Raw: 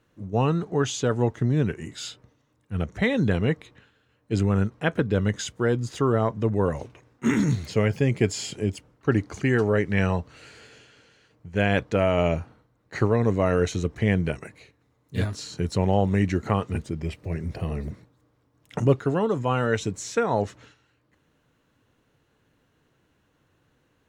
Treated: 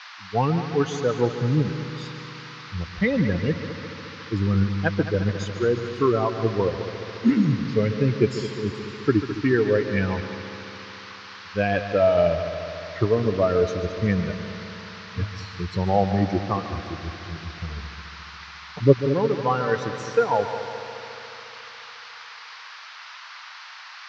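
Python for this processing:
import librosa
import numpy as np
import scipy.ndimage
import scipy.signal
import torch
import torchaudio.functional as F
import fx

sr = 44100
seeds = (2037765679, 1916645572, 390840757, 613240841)

y = fx.bin_expand(x, sr, power=2.0)
y = fx.dmg_noise_band(y, sr, seeds[0], low_hz=1000.0, high_hz=4900.0, level_db=-44.0)
y = fx.curve_eq(y, sr, hz=(100.0, 290.0, 880.0, 1900.0, 3300.0, 6000.0, 9000.0), db=(0, 5, 5, 1, -5, -3, -26))
y = fx.echo_heads(y, sr, ms=71, heads='second and third', feedback_pct=68, wet_db=-12.5)
y = F.gain(torch.from_numpy(y), 2.5).numpy()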